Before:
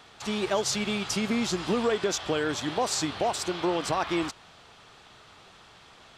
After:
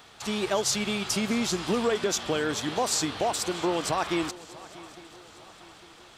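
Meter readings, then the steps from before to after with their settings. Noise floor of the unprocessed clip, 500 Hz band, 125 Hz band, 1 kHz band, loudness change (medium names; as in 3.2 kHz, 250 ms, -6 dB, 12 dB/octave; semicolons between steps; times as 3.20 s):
-54 dBFS, 0.0 dB, 0.0 dB, 0.0 dB, +0.5 dB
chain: treble shelf 10 kHz +11 dB; on a send: shuffle delay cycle 854 ms, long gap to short 3:1, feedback 45%, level -20 dB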